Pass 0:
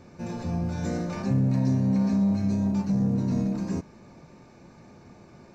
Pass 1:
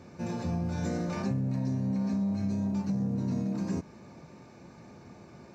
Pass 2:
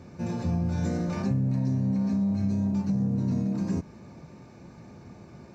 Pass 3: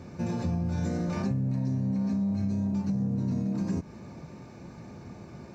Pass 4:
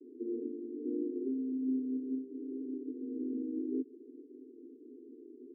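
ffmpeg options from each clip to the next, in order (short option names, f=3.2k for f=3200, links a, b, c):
-af "highpass=59,acompressor=threshold=-27dB:ratio=6"
-af "lowshelf=f=190:g=7.5"
-af "acompressor=threshold=-30dB:ratio=2.5,volume=2.5dB"
-filter_complex "[0:a]asplit=2[a][b];[b]acrusher=bits=4:mix=0:aa=0.5,volume=-8.5dB[c];[a][c]amix=inputs=2:normalize=0,asuperpass=centerf=340:order=20:qfactor=1.6"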